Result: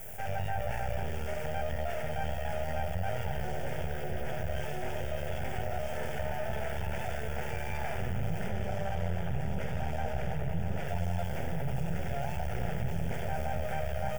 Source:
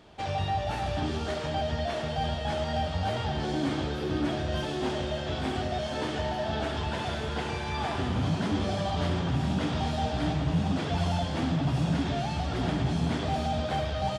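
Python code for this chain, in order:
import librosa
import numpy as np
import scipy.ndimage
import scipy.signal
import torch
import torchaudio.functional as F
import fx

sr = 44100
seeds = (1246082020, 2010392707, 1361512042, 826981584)

y = fx.dmg_noise_colour(x, sr, seeds[0], colour='violet', level_db=-53.0)
y = fx.high_shelf(y, sr, hz=6200.0, db=-6.0, at=(8.48, 10.88))
y = np.maximum(y, 0.0)
y = fx.low_shelf(y, sr, hz=480.0, db=3.5)
y = fx.fixed_phaser(y, sr, hz=1100.0, stages=6)
y = fx.env_flatten(y, sr, amount_pct=50)
y = y * librosa.db_to_amplitude(-3.5)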